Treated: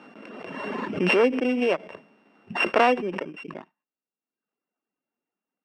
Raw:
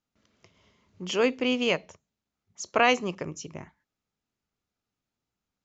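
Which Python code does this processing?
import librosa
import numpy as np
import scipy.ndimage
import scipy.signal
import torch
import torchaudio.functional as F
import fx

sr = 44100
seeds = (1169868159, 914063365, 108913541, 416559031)

y = np.r_[np.sort(x[:len(x) // 16 * 16].reshape(-1, 16), axis=1).ravel(), x[len(x) // 16 * 16:]]
y = scipy.signal.sosfilt(scipy.signal.butter(2, 1900.0, 'lowpass', fs=sr, output='sos'), y)
y = fx.dereverb_blind(y, sr, rt60_s=0.94)
y = scipy.signal.sosfilt(scipy.signal.butter(4, 230.0, 'highpass', fs=sr, output='sos'), y)
y = fx.pre_swell(y, sr, db_per_s=27.0)
y = y * librosa.db_to_amplitude(4.5)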